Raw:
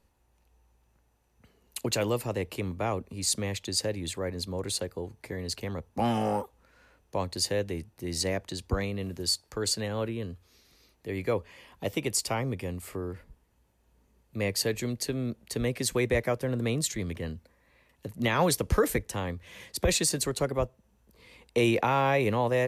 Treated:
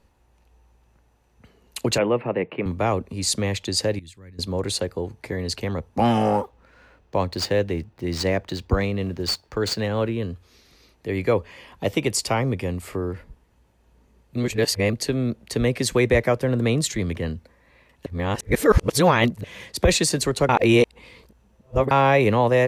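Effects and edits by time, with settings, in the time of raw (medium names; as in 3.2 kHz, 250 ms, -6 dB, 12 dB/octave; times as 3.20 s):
1.98–2.66 s: elliptic band-pass 140–2500 Hz
3.99–4.39 s: amplifier tone stack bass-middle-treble 6-0-2
6.29–10.19 s: median filter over 5 samples
14.37–14.93 s: reverse
18.06–19.44 s: reverse
20.49–21.91 s: reverse
whole clip: treble shelf 8.3 kHz -10.5 dB; trim +8 dB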